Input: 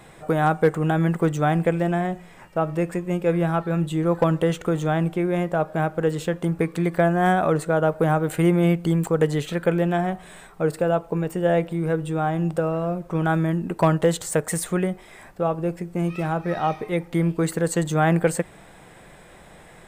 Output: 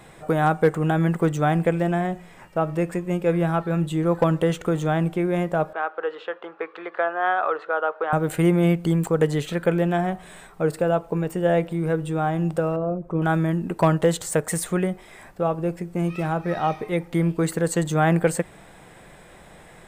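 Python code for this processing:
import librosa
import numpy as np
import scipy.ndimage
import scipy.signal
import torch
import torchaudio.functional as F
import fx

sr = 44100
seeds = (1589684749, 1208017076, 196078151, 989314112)

y = fx.cabinet(x, sr, low_hz=480.0, low_slope=24, high_hz=3200.0, hz=(610.0, 1300.0, 2200.0), db=(-6, 6, -5), at=(5.73, 8.13))
y = fx.envelope_sharpen(y, sr, power=1.5, at=(12.76, 13.22))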